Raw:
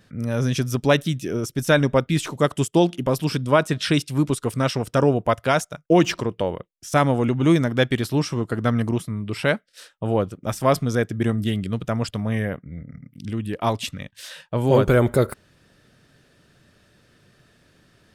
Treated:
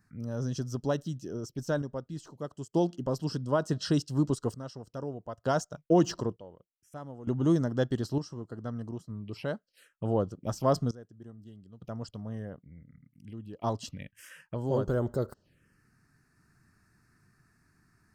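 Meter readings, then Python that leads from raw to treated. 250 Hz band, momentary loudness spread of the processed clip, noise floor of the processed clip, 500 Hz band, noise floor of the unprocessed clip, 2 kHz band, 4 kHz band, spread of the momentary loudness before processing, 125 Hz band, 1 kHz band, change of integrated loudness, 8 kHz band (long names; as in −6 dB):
−9.5 dB, 18 LU, −75 dBFS, −10.5 dB, −60 dBFS, −18.0 dB, −14.5 dB, 11 LU, −10.5 dB, −12.0 dB, −10.0 dB, −11.5 dB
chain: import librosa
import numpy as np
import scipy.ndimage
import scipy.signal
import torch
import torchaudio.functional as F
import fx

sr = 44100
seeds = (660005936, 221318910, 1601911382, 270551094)

y = fx.env_phaser(x, sr, low_hz=520.0, high_hz=2300.0, full_db=-22.5)
y = fx.notch(y, sr, hz=3600.0, q=6.0)
y = fx.tremolo_random(y, sr, seeds[0], hz=1.1, depth_pct=90)
y = y * 10.0 ** (-6.0 / 20.0)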